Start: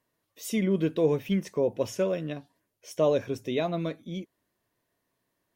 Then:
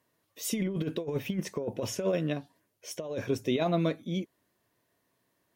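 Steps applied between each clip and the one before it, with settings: HPF 59 Hz; negative-ratio compressor -28 dBFS, ratio -0.5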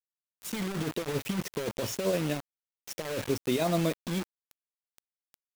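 opening faded in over 0.92 s; crackle 27/s -41 dBFS; bit-crush 6-bit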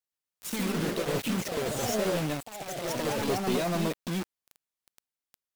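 in parallel at -10 dB: sine folder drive 11 dB, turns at -15.5 dBFS; on the sum: echoes that change speed 0.119 s, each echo +2 st, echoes 3; gain -6.5 dB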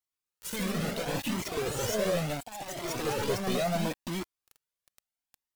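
cascading flanger rising 0.72 Hz; gain +3.5 dB

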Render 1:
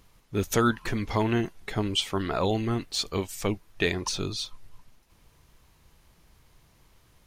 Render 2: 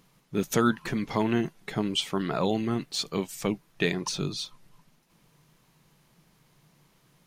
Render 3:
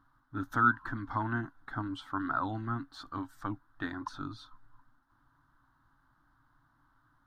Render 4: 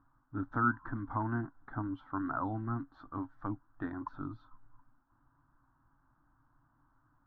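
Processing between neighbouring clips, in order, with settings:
resonant low shelf 110 Hz -10.5 dB, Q 3; gain -1.5 dB
EQ curve 110 Hz 0 dB, 180 Hz -25 dB, 280 Hz +1 dB, 420 Hz -26 dB, 830 Hz -4 dB, 1500 Hz +6 dB, 2400 Hz -29 dB, 3600 Hz -16 dB, 6800 Hz -27 dB, 11000 Hz -23 dB
LPF 1100 Hz 12 dB/oct

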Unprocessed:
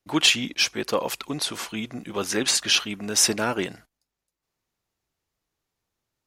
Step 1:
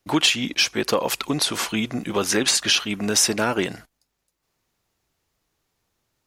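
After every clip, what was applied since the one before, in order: compressor 2.5:1, threshold -27 dBFS, peak gain reduction 9.5 dB; gain +8 dB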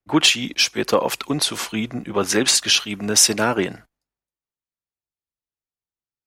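three-band expander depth 70%; gain +1.5 dB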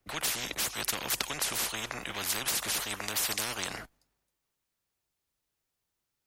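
spectral compressor 10:1; gain -8.5 dB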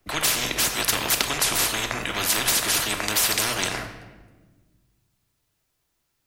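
reverb RT60 1.3 s, pre-delay 3 ms, DRR 5 dB; gain +8.5 dB

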